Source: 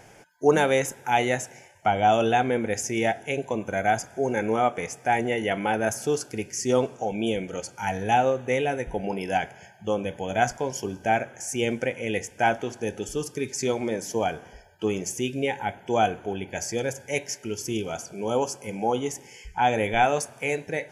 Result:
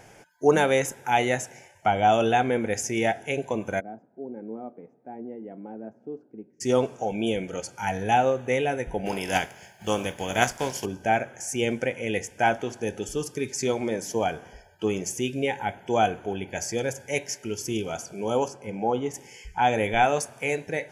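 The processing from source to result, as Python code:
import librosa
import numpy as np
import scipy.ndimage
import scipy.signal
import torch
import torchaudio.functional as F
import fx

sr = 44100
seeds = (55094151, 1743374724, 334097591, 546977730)

y = fx.ladder_bandpass(x, sr, hz=290.0, resonance_pct=40, at=(3.79, 6.6), fade=0.02)
y = fx.spec_flatten(y, sr, power=0.64, at=(9.05, 10.84), fade=0.02)
y = fx.lowpass(y, sr, hz=1900.0, slope=6, at=(18.48, 19.14))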